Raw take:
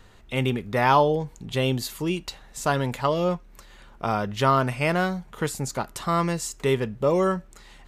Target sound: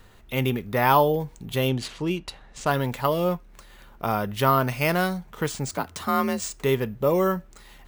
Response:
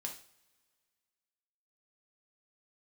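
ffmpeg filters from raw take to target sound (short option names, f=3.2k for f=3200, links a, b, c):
-filter_complex "[0:a]asettb=1/sr,asplit=3[a][b][c];[a]atrim=end=4.684[d];[b]atrim=start=4.68:end=5.18,asetpts=PTS-STARTPTS,afade=t=in:d=0.004:c=qsin,afade=t=out:st=0.496:d=0.004:c=qsin,equalizer=f=5.1k:w=1.2:g=6[e];[c]atrim=start=5.176[f];[d][e]acrossfade=d=0.004:c1=hsin:c2=qsin[g];[g][f]acrossfade=d=0.004:c1=qsin:c2=hsin,acrusher=samples=3:mix=1:aa=0.000001,asettb=1/sr,asplit=3[h][i][j];[h]atrim=end=1.684[k];[i]atrim=start=1.68:end=2.71,asetpts=PTS-STARTPTS,afade=t=in:d=0.004:c=qsin,afade=t=out:st=1.026:d=0.004:c=qsin,adynamicsmooth=sensitivity=4.5:basefreq=5k[l];[j]atrim=start=2.706[m];[k][l]acrossfade=d=0.004:c1=hsin:c2=qsin[n];[n][m]acrossfade=d=0.004:c1=qsin:c2=hsin,asettb=1/sr,asplit=3[o][p][q];[o]atrim=end=5.714[r];[p]atrim=start=5.71:end=6.44,asetpts=PTS-STARTPTS,afade=t=in:d=0.004:c=qsin,afade=t=out:st=0.726:d=0.004:c=qsin,afreqshift=47[s];[q]atrim=start=6.436[t];[r][s]acrossfade=d=0.004:c1=hsin:c2=qsin[u];[u][t]acrossfade=d=0.004:c1=qsin:c2=hsin"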